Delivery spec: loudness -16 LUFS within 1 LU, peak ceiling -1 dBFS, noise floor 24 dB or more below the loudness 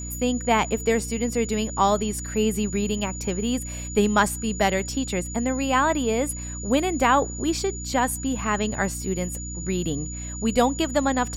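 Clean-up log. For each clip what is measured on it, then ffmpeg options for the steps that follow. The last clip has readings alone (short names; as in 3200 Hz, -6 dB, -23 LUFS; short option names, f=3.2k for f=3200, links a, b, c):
hum 60 Hz; harmonics up to 300 Hz; hum level -32 dBFS; steady tone 6900 Hz; tone level -35 dBFS; loudness -24.0 LUFS; peak -7.0 dBFS; loudness target -16.0 LUFS
-> -af "bandreject=f=60:t=h:w=6,bandreject=f=120:t=h:w=6,bandreject=f=180:t=h:w=6,bandreject=f=240:t=h:w=6,bandreject=f=300:t=h:w=6"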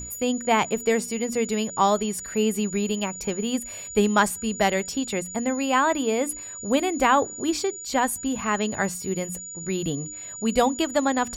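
hum none; steady tone 6900 Hz; tone level -35 dBFS
-> -af "bandreject=f=6.9k:w=30"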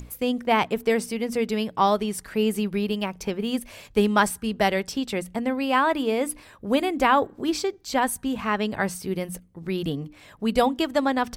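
steady tone none; loudness -25.0 LUFS; peak -7.5 dBFS; loudness target -16.0 LUFS
-> -af "volume=9dB,alimiter=limit=-1dB:level=0:latency=1"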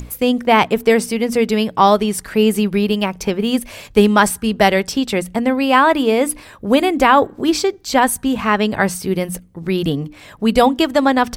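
loudness -16.0 LUFS; peak -1.0 dBFS; noise floor -42 dBFS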